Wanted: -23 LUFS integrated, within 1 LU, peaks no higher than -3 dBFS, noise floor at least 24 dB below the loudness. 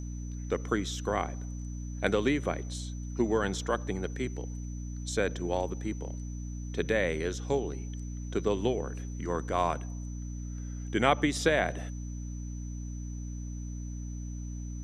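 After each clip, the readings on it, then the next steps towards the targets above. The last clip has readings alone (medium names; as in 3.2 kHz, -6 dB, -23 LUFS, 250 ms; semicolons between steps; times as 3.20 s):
hum 60 Hz; highest harmonic 300 Hz; hum level -35 dBFS; steady tone 6 kHz; tone level -52 dBFS; loudness -33.0 LUFS; peak level -7.5 dBFS; loudness target -23.0 LUFS
-> hum notches 60/120/180/240/300 Hz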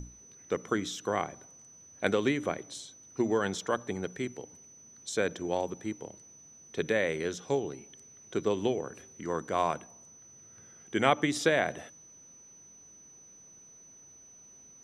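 hum not found; steady tone 6 kHz; tone level -52 dBFS
-> band-stop 6 kHz, Q 30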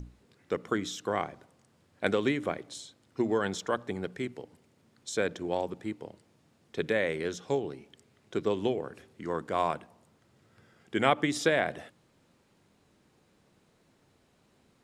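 steady tone not found; loudness -32.0 LUFS; peak level -8.0 dBFS; loudness target -23.0 LUFS
-> trim +9 dB; peak limiter -3 dBFS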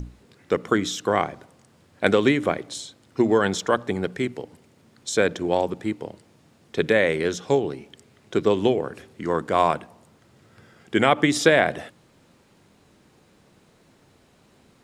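loudness -23.0 LUFS; peak level -3.0 dBFS; noise floor -58 dBFS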